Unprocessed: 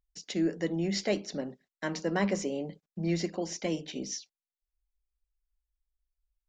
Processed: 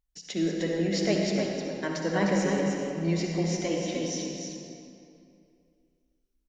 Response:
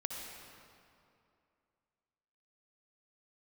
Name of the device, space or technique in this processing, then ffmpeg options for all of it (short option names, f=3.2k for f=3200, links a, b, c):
stairwell: -filter_complex "[1:a]atrim=start_sample=2205[a];[0:a][a]afir=irnorm=-1:irlink=0,aecho=1:1:305:0.531,volume=2.5dB"